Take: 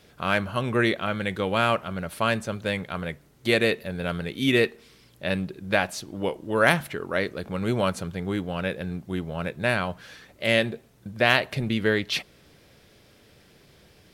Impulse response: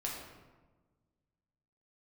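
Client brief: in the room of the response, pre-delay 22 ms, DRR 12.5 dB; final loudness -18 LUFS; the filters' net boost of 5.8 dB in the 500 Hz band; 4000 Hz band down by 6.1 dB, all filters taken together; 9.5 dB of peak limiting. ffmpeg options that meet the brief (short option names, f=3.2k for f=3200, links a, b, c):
-filter_complex "[0:a]equalizer=f=500:t=o:g=7,equalizer=f=4k:t=o:g=-8.5,alimiter=limit=-12.5dB:level=0:latency=1,asplit=2[a][b];[1:a]atrim=start_sample=2205,adelay=22[c];[b][c]afir=irnorm=-1:irlink=0,volume=-14.5dB[d];[a][d]amix=inputs=2:normalize=0,volume=7.5dB"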